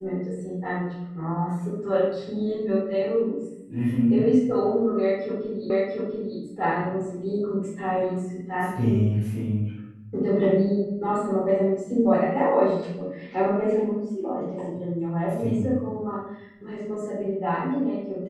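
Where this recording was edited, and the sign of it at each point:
5.7 repeat of the last 0.69 s

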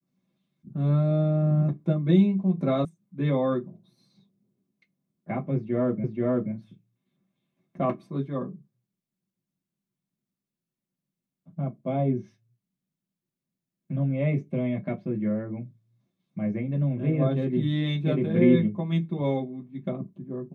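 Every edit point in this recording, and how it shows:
2.85 sound cut off
6.04 repeat of the last 0.48 s

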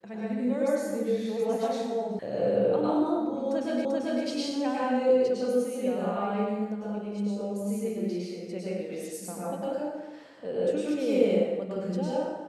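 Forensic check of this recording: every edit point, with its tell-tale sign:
2.19 sound cut off
3.85 repeat of the last 0.39 s

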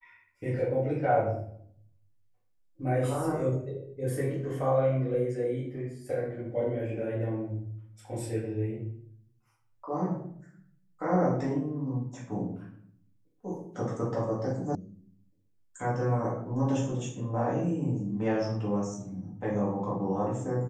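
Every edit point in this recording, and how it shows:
14.75 sound cut off

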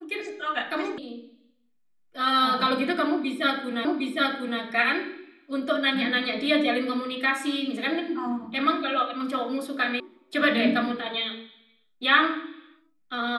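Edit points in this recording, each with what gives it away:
0.98 sound cut off
3.85 repeat of the last 0.76 s
10 sound cut off

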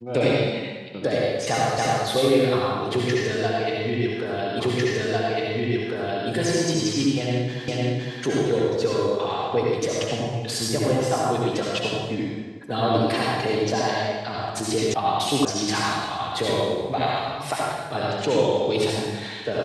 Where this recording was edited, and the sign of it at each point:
1.78 repeat of the last 0.28 s
4.6 repeat of the last 1.7 s
7.68 repeat of the last 0.51 s
14.94 sound cut off
15.45 sound cut off

